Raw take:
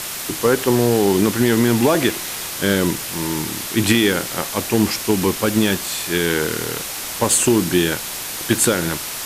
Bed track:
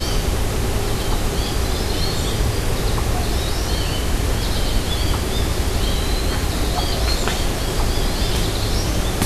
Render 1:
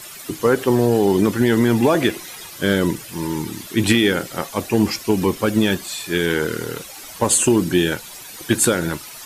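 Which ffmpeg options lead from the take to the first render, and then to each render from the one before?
ffmpeg -i in.wav -af "afftdn=noise_reduction=13:noise_floor=-28" out.wav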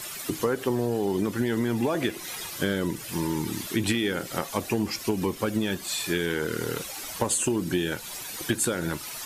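ffmpeg -i in.wav -af "acompressor=threshold=-24dB:ratio=4" out.wav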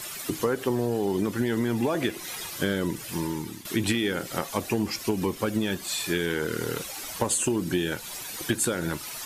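ffmpeg -i in.wav -filter_complex "[0:a]asplit=2[link_01][link_02];[link_01]atrim=end=3.65,asetpts=PTS-STARTPTS,afade=type=out:start_time=2.95:duration=0.7:curve=qsin:silence=0.211349[link_03];[link_02]atrim=start=3.65,asetpts=PTS-STARTPTS,afade=type=in:duration=0.004:curve=hsin:silence=0.211349[link_04];[link_03][link_04]concat=n=2:v=0:a=1" out.wav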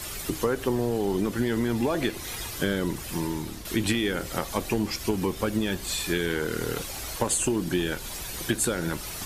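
ffmpeg -i in.wav -i bed.wav -filter_complex "[1:a]volume=-22dB[link_01];[0:a][link_01]amix=inputs=2:normalize=0" out.wav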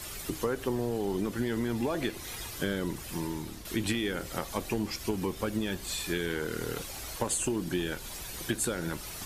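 ffmpeg -i in.wav -af "volume=-5dB" out.wav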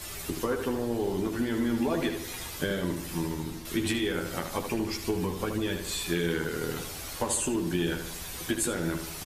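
ffmpeg -i in.wav -filter_complex "[0:a]asplit=2[link_01][link_02];[link_02]adelay=12,volume=-4.5dB[link_03];[link_01][link_03]amix=inputs=2:normalize=0,asplit=2[link_04][link_05];[link_05]adelay=76,lowpass=frequency=3800:poles=1,volume=-7dB,asplit=2[link_06][link_07];[link_07]adelay=76,lowpass=frequency=3800:poles=1,volume=0.5,asplit=2[link_08][link_09];[link_09]adelay=76,lowpass=frequency=3800:poles=1,volume=0.5,asplit=2[link_10][link_11];[link_11]adelay=76,lowpass=frequency=3800:poles=1,volume=0.5,asplit=2[link_12][link_13];[link_13]adelay=76,lowpass=frequency=3800:poles=1,volume=0.5,asplit=2[link_14][link_15];[link_15]adelay=76,lowpass=frequency=3800:poles=1,volume=0.5[link_16];[link_04][link_06][link_08][link_10][link_12][link_14][link_16]amix=inputs=7:normalize=0" out.wav

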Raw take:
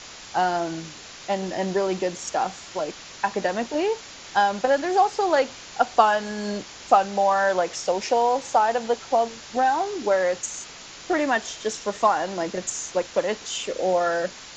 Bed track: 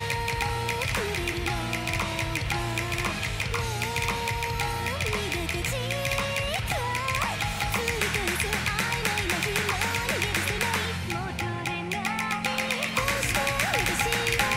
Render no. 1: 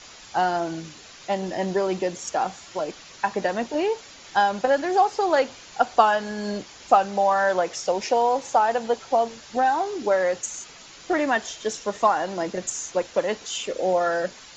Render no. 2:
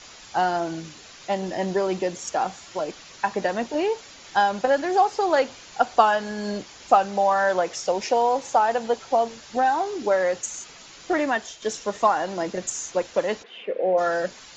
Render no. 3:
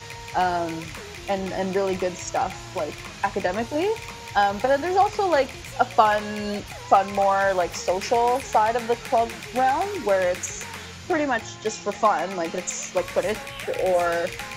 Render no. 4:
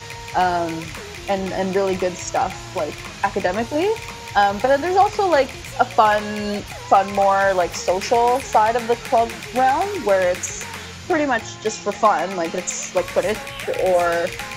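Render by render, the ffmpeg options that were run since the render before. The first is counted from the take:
ffmpeg -i in.wav -af "afftdn=noise_reduction=6:noise_floor=-42" out.wav
ffmpeg -i in.wav -filter_complex "[0:a]asplit=3[link_01][link_02][link_03];[link_01]afade=type=out:start_time=13.42:duration=0.02[link_04];[link_02]highpass=frequency=190:width=0.5412,highpass=frequency=190:width=1.3066,equalizer=frequency=280:width_type=q:width=4:gain=-7,equalizer=frequency=480:width_type=q:width=4:gain=4,equalizer=frequency=910:width_type=q:width=4:gain=-5,equalizer=frequency=1300:width_type=q:width=4:gain=-8,lowpass=frequency=2400:width=0.5412,lowpass=frequency=2400:width=1.3066,afade=type=in:start_time=13.42:duration=0.02,afade=type=out:start_time=13.97:duration=0.02[link_05];[link_03]afade=type=in:start_time=13.97:duration=0.02[link_06];[link_04][link_05][link_06]amix=inputs=3:normalize=0,asplit=2[link_07][link_08];[link_07]atrim=end=11.62,asetpts=PTS-STARTPTS,afade=type=out:start_time=11.2:duration=0.42:silence=0.473151[link_09];[link_08]atrim=start=11.62,asetpts=PTS-STARTPTS,afade=type=in:duration=0.004:curve=hsin:silence=0.473151[link_10];[link_09][link_10]concat=n=2:v=0:a=1" out.wav
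ffmpeg -i in.wav -i bed.wav -filter_complex "[1:a]volume=-10dB[link_01];[0:a][link_01]amix=inputs=2:normalize=0" out.wav
ffmpeg -i in.wav -af "volume=4dB,alimiter=limit=-2dB:level=0:latency=1" out.wav

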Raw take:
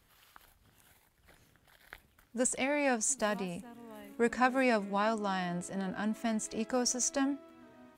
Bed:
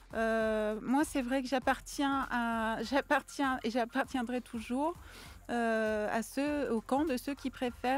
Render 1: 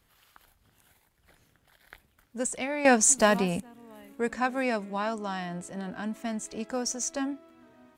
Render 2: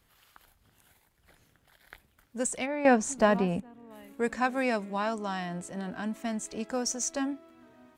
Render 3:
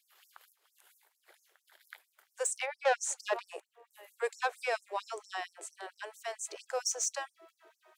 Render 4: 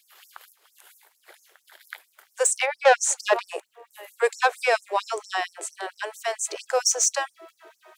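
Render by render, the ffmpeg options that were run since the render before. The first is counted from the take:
ffmpeg -i in.wav -filter_complex "[0:a]asplit=3[link_01][link_02][link_03];[link_01]atrim=end=2.852[link_04];[link_02]atrim=start=2.848:end=3.602,asetpts=PTS-STARTPTS,volume=10.5dB[link_05];[link_03]atrim=start=3.598[link_06];[link_04][link_05]acrossfade=duration=0.004:curve1=hsin:curve2=hsin[link_07];[link_07][link_06]acrossfade=duration=0.004:curve1=hsin:curve2=hsin" out.wav
ffmpeg -i in.wav -filter_complex "[0:a]asplit=3[link_01][link_02][link_03];[link_01]afade=type=out:start_time=2.65:duration=0.02[link_04];[link_02]lowpass=frequency=1400:poles=1,afade=type=in:start_time=2.65:duration=0.02,afade=type=out:start_time=3.9:duration=0.02[link_05];[link_03]afade=type=in:start_time=3.9:duration=0.02[link_06];[link_04][link_05][link_06]amix=inputs=3:normalize=0" out.wav
ffmpeg -i in.wav -af "asoftclip=type=tanh:threshold=-20dB,afftfilt=real='re*gte(b*sr/1024,310*pow(5400/310,0.5+0.5*sin(2*PI*4.4*pts/sr)))':imag='im*gte(b*sr/1024,310*pow(5400/310,0.5+0.5*sin(2*PI*4.4*pts/sr)))':win_size=1024:overlap=0.75" out.wav
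ffmpeg -i in.wav -af "volume=11.5dB" out.wav

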